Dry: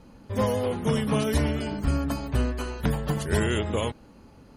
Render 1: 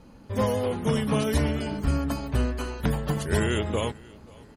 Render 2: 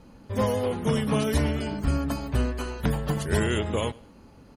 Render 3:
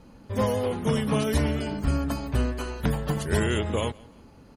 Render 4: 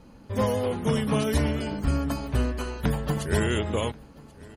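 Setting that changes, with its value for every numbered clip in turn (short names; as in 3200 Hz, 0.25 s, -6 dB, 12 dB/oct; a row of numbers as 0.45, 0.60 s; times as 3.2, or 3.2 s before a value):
feedback echo, time: 0.538, 0.103, 0.17, 1.085 s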